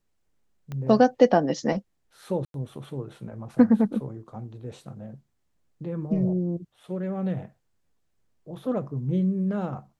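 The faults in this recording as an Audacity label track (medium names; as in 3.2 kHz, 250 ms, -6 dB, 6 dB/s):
0.720000	0.720000	pop -23 dBFS
2.450000	2.540000	dropout 92 ms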